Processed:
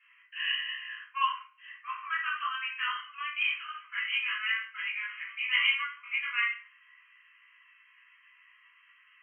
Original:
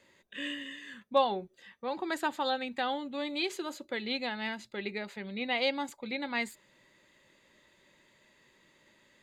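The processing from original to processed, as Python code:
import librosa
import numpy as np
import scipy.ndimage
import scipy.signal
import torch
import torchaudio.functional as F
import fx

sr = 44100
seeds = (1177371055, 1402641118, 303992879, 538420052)

y = fx.brickwall_bandpass(x, sr, low_hz=1000.0, high_hz=3200.0)
y = fx.doubler(y, sr, ms=18.0, db=-5)
y = fx.room_shoebox(y, sr, seeds[0], volume_m3=44.0, walls='mixed', distance_m=3.1)
y = y * 10.0 ** (-7.0 / 20.0)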